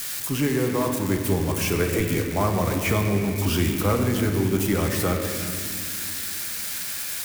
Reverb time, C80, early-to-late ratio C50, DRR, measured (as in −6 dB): 2.3 s, 4.5 dB, 3.5 dB, 2.0 dB